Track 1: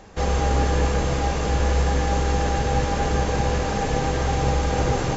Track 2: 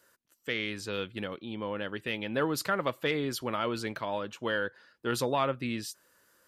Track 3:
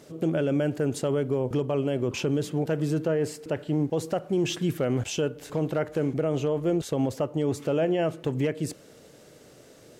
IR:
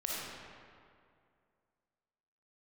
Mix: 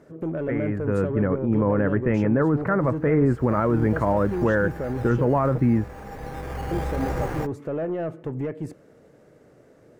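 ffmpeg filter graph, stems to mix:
-filter_complex "[0:a]acrusher=samples=9:mix=1:aa=0.000001:lfo=1:lforange=5.4:lforate=0.75,adelay=2300,volume=0.531,afade=t=in:st=3.29:d=0.38:silence=0.251189[s0];[1:a]dynaudnorm=f=190:g=11:m=2.66,lowpass=f=2000:w=0.5412,lowpass=f=2000:w=1.3066,aemphasis=mode=reproduction:type=bsi,volume=1.06,asplit=2[s1][s2];[2:a]asoftclip=type=tanh:threshold=0.1,volume=0.596,asplit=3[s3][s4][s5];[s3]atrim=end=5.58,asetpts=PTS-STARTPTS,afade=t=out:st=5.576:d=0.004:c=hsin[s6];[s4]atrim=start=5.58:end=6.71,asetpts=PTS-STARTPTS,volume=0[s7];[s5]atrim=start=6.71,asetpts=PTS-STARTPTS,afade=t=in:d=0.004:c=hsin[s8];[s6][s7][s8]concat=n=3:v=0:a=1[s9];[s2]apad=whole_len=329408[s10];[s0][s10]sidechaincompress=threshold=0.0501:ratio=12:attack=7.6:release=1440[s11];[s1][s9]amix=inputs=2:normalize=0,tiltshelf=f=1400:g=4,alimiter=limit=0.237:level=0:latency=1:release=38,volume=1[s12];[s11][s12]amix=inputs=2:normalize=0,highshelf=f=2500:t=q:w=1.5:g=-7"

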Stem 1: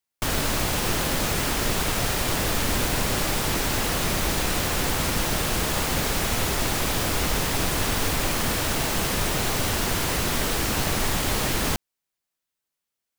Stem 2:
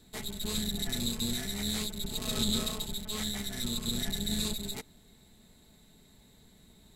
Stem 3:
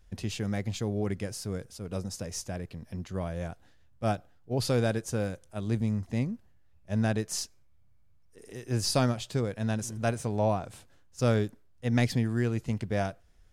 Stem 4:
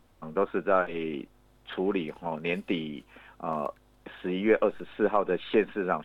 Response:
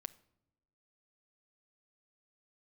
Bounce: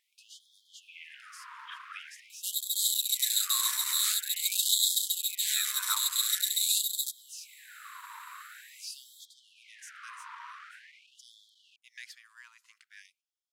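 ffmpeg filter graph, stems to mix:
-filter_complex "[0:a]lowpass=1000,dynaudnorm=f=430:g=7:m=1.78,asoftclip=type=tanh:threshold=0.126,volume=0.335[s0];[1:a]crystalizer=i=3:c=0,adelay=2300,volume=0.841[s1];[2:a]agate=range=0.355:threshold=0.00631:ratio=16:detection=peak,volume=0.282[s2];[3:a]volume=0.631[s3];[s0][s1][s2][s3]amix=inputs=4:normalize=0,afftfilt=real='re*gte(b*sr/1024,900*pow(3200/900,0.5+0.5*sin(2*PI*0.46*pts/sr)))':imag='im*gte(b*sr/1024,900*pow(3200/900,0.5+0.5*sin(2*PI*0.46*pts/sr)))':win_size=1024:overlap=0.75"

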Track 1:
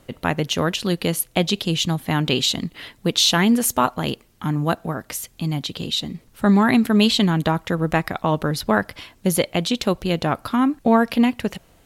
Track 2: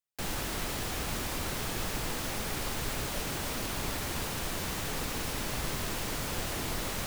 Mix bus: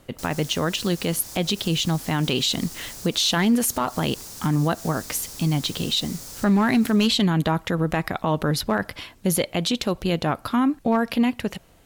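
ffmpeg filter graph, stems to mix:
-filter_complex "[0:a]dynaudnorm=f=400:g=13:m=2.51,aeval=exprs='clip(val(0),-1,0.422)':c=same,volume=0.944,asplit=2[s0][s1];[1:a]highshelf=f=3900:t=q:w=1.5:g=11,volume=0.282[s2];[s1]apad=whole_len=311671[s3];[s2][s3]sidechaincompress=threshold=0.0891:ratio=8:attack=39:release=181[s4];[s0][s4]amix=inputs=2:normalize=0,alimiter=limit=0.237:level=0:latency=1:release=52"

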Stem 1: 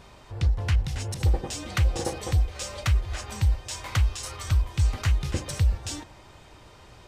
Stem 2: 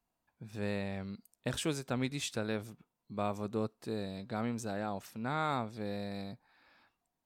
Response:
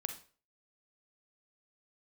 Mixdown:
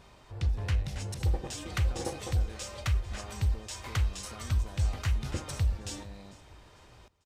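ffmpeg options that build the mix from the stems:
-filter_complex "[0:a]volume=0.355,asplit=3[s0][s1][s2];[s1]volume=0.501[s3];[s2]volume=0.133[s4];[1:a]acompressor=threshold=0.01:ratio=6,volume=0.531[s5];[2:a]atrim=start_sample=2205[s6];[s3][s6]afir=irnorm=-1:irlink=0[s7];[s4]aecho=0:1:447|894|1341|1788|2235:1|0.38|0.144|0.0549|0.0209[s8];[s0][s5][s7][s8]amix=inputs=4:normalize=0"

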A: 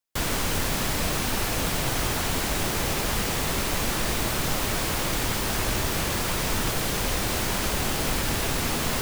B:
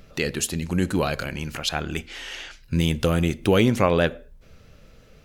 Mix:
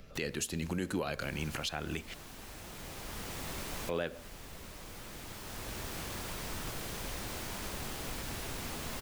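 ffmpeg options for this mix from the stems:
-filter_complex "[0:a]volume=0.188,asplit=2[s0][s1];[s1]volume=0.335[s2];[1:a]acrossover=split=230|3000[s3][s4][s5];[s3]acompressor=threshold=0.0282:ratio=6[s6];[s6][s4][s5]amix=inputs=3:normalize=0,volume=0.631,asplit=3[s7][s8][s9];[s7]atrim=end=2.14,asetpts=PTS-STARTPTS,afade=t=out:st=2.136:d=0.004:c=hsin[s10];[s8]atrim=start=2.14:end=3.89,asetpts=PTS-STARTPTS,volume=0[s11];[s9]atrim=start=3.89,asetpts=PTS-STARTPTS,afade=t=in:d=0.004:c=hsin[s12];[s10][s11][s12]concat=n=3:v=0:a=1,asplit=2[s13][s14];[s14]apad=whole_len=397561[s15];[s0][s15]sidechaincompress=threshold=0.00316:ratio=3:attack=16:release=904[s16];[s2]aecho=0:1:1058:1[s17];[s16][s13][s17]amix=inputs=3:normalize=0,alimiter=limit=0.0631:level=0:latency=1:release=213"

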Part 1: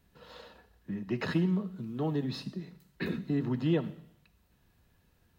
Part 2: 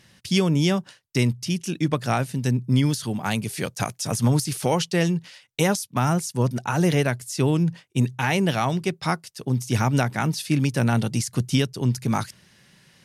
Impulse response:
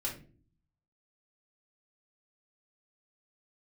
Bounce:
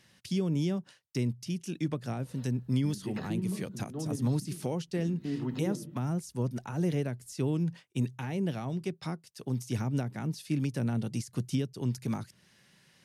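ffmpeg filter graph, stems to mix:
-filter_complex "[0:a]adelay=1950,volume=1.19,asplit=2[s0][s1];[s1]volume=0.0944[s2];[1:a]lowshelf=f=91:g=-7,volume=0.447,asplit=2[s3][s4];[s4]apad=whole_len=323595[s5];[s0][s5]sidechaincompress=threshold=0.0224:ratio=8:attack=6.9:release=833[s6];[2:a]atrim=start_sample=2205[s7];[s2][s7]afir=irnorm=-1:irlink=0[s8];[s6][s3][s8]amix=inputs=3:normalize=0,acrossover=split=480[s9][s10];[s10]acompressor=threshold=0.00708:ratio=6[s11];[s9][s11]amix=inputs=2:normalize=0"

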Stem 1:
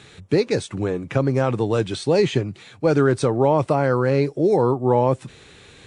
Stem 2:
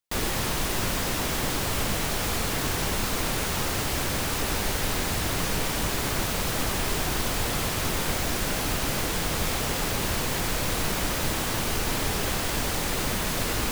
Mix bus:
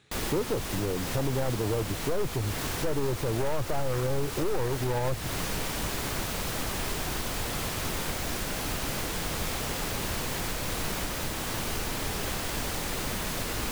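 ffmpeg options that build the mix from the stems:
-filter_complex "[0:a]afwtdn=0.0891,aeval=exprs='(tanh(7.94*val(0)+0.15)-tanh(0.15))/7.94':c=same,asubboost=boost=8.5:cutoff=68,volume=1.12[s0];[1:a]volume=0.596[s1];[s0][s1]amix=inputs=2:normalize=0,alimiter=limit=0.106:level=0:latency=1:release=225"

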